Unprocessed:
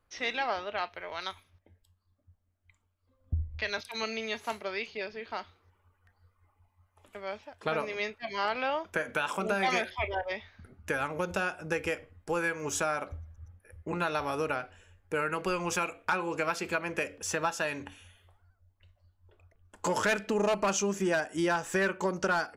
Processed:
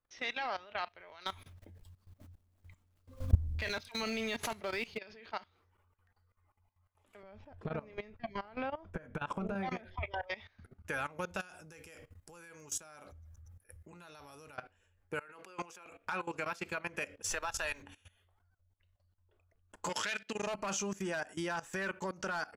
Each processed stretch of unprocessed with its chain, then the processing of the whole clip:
1.26–4.98 s: companding laws mixed up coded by mu + bass shelf 430 Hz +8.5 dB + swell ahead of each attack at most 140 dB/s
7.23–10.03 s: tilt EQ -4.5 dB/octave + compression 20:1, threshold -28 dBFS
11.40–14.58 s: tone controls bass +3 dB, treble +12 dB + compression 3:1, threshold -37 dBFS
15.19–15.86 s: high-pass 280 Hz + compressor with a negative ratio -38 dBFS, ratio -0.5
17.29–17.81 s: high-pass 410 Hz + treble shelf 2.6 kHz +4 dB + added noise brown -45 dBFS
19.89–20.47 s: frequency weighting D + upward expansion, over -37 dBFS
whole clip: dynamic bell 380 Hz, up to -5 dB, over -42 dBFS, Q 0.94; level held to a coarse grid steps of 18 dB

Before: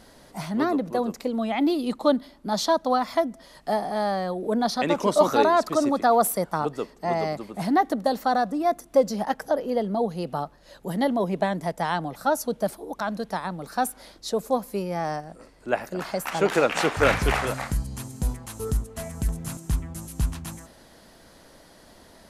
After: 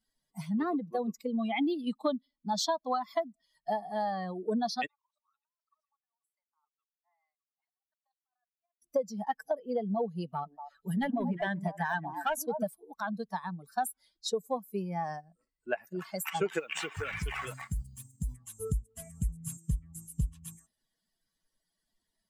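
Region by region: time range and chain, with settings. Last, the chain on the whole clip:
4.86–8.82 s: ladder band-pass 1.1 kHz, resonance 35% + differentiator + compressor with a negative ratio -54 dBFS, ratio -0.5
10.34–12.63 s: peaking EQ 1.6 kHz +6 dB 0.32 oct + hard clipper -18.5 dBFS + repeats whose band climbs or falls 118 ms, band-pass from 290 Hz, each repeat 1.4 oct, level -1 dB
16.59–18.33 s: companding laws mixed up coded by A + compression 8:1, threshold -23 dBFS
whole clip: expander on every frequency bin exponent 2; compression 5:1, threshold -32 dBFS; trim +4 dB

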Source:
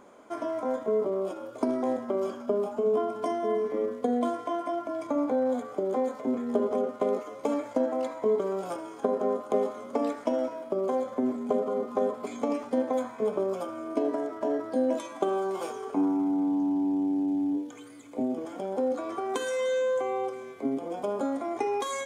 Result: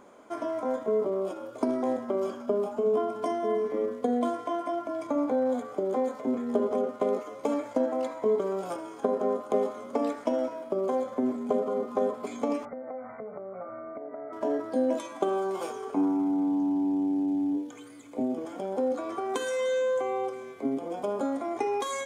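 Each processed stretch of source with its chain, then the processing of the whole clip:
12.65–14.33 s: compression, threshold -36 dBFS + brick-wall FIR low-pass 2.4 kHz + comb 1.5 ms, depth 53%
whole clip: none

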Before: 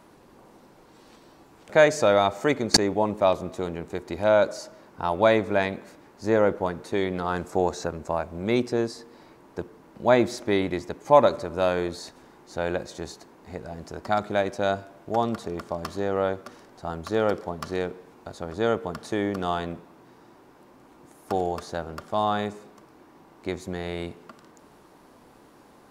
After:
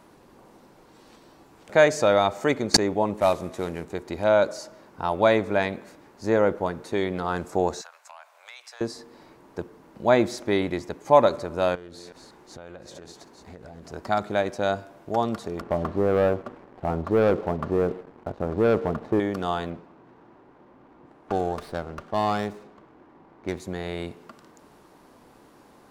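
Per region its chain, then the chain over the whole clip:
3.18–3.85 s: CVSD coder 64 kbps + peaking EQ 1.9 kHz +4.5 dB 0.71 oct
7.81–8.81 s: Bessel high-pass 1.3 kHz, order 8 + compression, threshold -39 dBFS + transformer saturation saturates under 2.6 kHz
11.75–13.92 s: chunks repeated in reverse 187 ms, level -12 dB + compression, threshold -39 dBFS + loudspeaker Doppler distortion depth 0.2 ms
15.61–19.20 s: low-pass 1 kHz + waveshaping leveller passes 2
19.70–23.60 s: level-controlled noise filter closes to 1.8 kHz, open at -24.5 dBFS + sliding maximum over 5 samples
whole clip: none

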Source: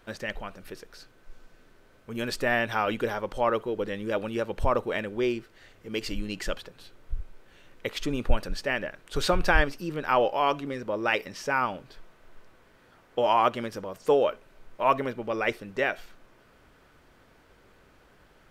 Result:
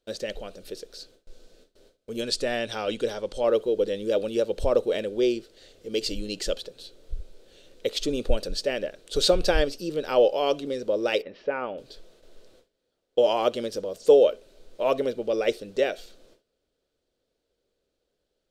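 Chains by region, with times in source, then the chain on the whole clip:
2.21–3.44 s: low-pass 11 kHz 24 dB/octave + peaking EQ 470 Hz -4.5 dB 1.5 oct
11.22–11.78 s: low-pass 2.5 kHz 24 dB/octave + bass shelf 160 Hz -9.5 dB
whole clip: gate with hold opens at -46 dBFS; graphic EQ 125/500/1000/2000/4000/8000 Hz -5/+11/-10/-7/+10/+6 dB; trim -1 dB

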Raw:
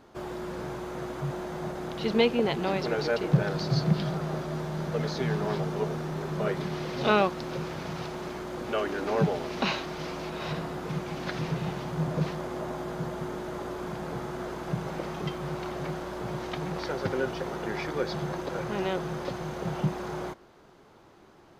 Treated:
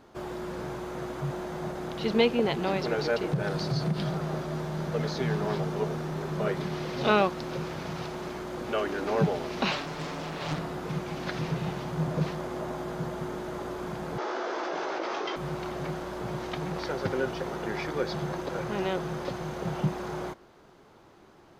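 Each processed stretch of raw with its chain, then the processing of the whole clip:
3.28–4.04 s: peaking EQ 9.1 kHz +6 dB 0.25 oct + compression 3:1, threshold -24 dBFS
9.71–10.59 s: comb 6.9 ms, depth 50% + loudspeaker Doppler distortion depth 0.97 ms
14.18–15.36 s: elliptic band-pass 330–5800 Hz + doubling 18 ms -5.5 dB + level flattener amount 100%
whole clip: none

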